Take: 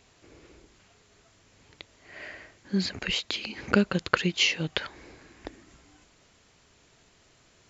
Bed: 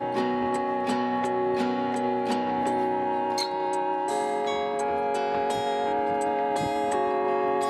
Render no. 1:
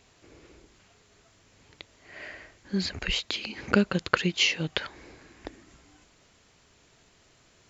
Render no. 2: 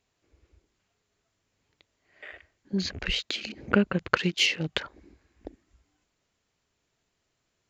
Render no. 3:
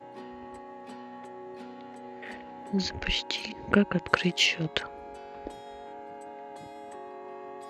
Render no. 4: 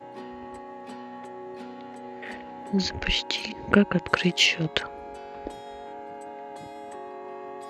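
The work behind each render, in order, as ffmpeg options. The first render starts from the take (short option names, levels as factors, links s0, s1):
-filter_complex "[0:a]asettb=1/sr,asplit=3[s0][s1][s2];[s0]atrim=end=2.244[s3];[s1]atrim=start=2.24:end=3.23,asetpts=PTS-STARTPTS,afade=t=in:d=0.004:c=qsin,afade=t=out:st=0.986:d=0.004:c=qsin,asubboost=boost=12:cutoff=83[s4];[s2]atrim=start=3.226[s5];[s3][s4]acrossfade=d=0.004:c1=hsin:c2=qsin[s6];[s6][s5]acrossfade=d=0.004:c1=qsin:c2=hsin"
-af "afwtdn=0.0112"
-filter_complex "[1:a]volume=0.133[s0];[0:a][s0]amix=inputs=2:normalize=0"
-af "volume=1.5,alimiter=limit=0.891:level=0:latency=1"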